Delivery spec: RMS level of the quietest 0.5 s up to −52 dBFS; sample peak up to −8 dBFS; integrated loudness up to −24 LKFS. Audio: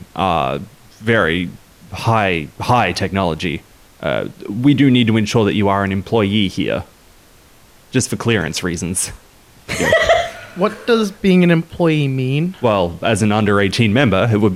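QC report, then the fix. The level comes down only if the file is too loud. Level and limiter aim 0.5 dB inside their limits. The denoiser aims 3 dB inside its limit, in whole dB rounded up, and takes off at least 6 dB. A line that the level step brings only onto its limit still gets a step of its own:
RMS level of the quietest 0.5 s −47 dBFS: out of spec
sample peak −2.5 dBFS: out of spec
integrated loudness −16.5 LKFS: out of spec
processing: level −8 dB

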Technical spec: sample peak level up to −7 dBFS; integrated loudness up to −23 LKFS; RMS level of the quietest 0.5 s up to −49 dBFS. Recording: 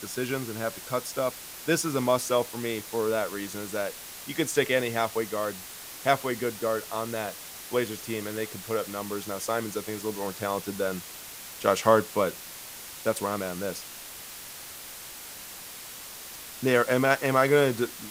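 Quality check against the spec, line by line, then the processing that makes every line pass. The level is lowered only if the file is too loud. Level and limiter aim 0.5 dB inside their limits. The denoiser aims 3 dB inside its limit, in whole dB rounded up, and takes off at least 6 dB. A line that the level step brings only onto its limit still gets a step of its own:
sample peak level −5.5 dBFS: out of spec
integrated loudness −28.0 LKFS: in spec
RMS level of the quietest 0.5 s −42 dBFS: out of spec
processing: broadband denoise 10 dB, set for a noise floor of −42 dBFS
brickwall limiter −7.5 dBFS

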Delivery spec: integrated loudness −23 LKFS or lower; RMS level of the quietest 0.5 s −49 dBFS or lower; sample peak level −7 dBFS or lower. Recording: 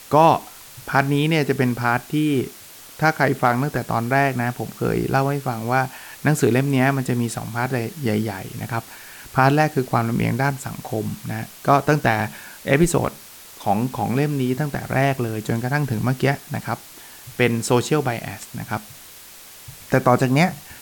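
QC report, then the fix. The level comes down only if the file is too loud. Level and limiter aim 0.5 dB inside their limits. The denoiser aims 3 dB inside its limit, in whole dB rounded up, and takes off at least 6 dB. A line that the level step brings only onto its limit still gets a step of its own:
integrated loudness −21.5 LKFS: out of spec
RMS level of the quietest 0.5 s −43 dBFS: out of spec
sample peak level −3.5 dBFS: out of spec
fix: broadband denoise 7 dB, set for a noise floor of −43 dBFS
level −2 dB
brickwall limiter −7.5 dBFS

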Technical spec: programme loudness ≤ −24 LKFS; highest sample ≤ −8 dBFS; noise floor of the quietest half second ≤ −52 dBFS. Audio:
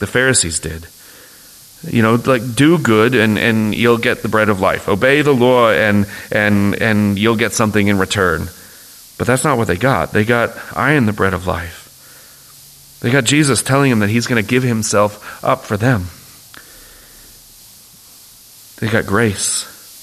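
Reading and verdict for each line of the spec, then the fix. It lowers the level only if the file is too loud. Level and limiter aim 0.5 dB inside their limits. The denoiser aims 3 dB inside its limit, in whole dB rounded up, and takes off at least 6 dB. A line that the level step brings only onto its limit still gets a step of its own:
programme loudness −14.5 LKFS: out of spec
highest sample −1.5 dBFS: out of spec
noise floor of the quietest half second −42 dBFS: out of spec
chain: broadband denoise 6 dB, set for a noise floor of −42 dBFS
level −10 dB

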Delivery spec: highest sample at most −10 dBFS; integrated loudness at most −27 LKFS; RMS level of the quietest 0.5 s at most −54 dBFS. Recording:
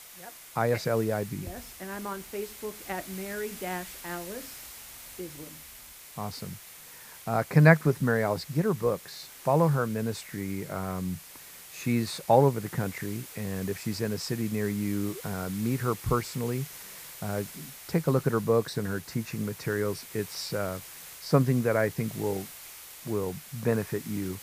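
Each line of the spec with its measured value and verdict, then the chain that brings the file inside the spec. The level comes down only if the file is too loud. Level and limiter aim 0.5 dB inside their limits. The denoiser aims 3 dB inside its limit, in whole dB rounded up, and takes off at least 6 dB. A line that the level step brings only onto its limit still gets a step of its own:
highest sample −5.5 dBFS: out of spec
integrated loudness −29.5 LKFS: in spec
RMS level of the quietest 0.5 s −48 dBFS: out of spec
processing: broadband denoise 9 dB, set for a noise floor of −48 dBFS
brickwall limiter −10.5 dBFS

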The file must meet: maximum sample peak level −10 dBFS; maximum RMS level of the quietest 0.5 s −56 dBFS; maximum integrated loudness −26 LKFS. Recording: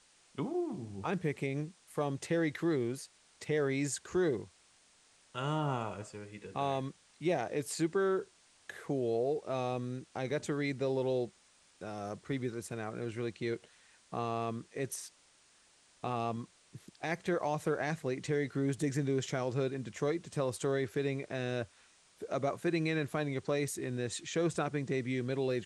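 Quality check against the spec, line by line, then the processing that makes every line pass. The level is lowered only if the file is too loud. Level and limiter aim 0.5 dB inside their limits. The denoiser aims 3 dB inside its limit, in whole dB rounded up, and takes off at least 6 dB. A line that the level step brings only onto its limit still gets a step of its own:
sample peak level −20.0 dBFS: in spec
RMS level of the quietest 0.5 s −66 dBFS: in spec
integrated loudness −35.5 LKFS: in spec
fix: no processing needed

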